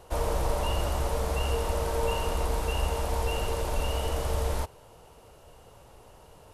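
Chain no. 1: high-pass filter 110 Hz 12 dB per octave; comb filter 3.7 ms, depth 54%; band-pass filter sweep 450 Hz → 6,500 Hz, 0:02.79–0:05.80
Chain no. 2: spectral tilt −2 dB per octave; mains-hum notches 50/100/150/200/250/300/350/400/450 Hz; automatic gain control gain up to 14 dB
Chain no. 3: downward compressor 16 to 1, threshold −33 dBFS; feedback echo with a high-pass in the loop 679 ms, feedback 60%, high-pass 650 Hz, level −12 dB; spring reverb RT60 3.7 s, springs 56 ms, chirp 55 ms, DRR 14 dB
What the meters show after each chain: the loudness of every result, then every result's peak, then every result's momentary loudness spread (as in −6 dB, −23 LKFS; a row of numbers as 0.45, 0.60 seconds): −37.0, −18.0, −39.0 LKFS; −20.5, −1.0, −23.5 dBFS; 11, 20, 14 LU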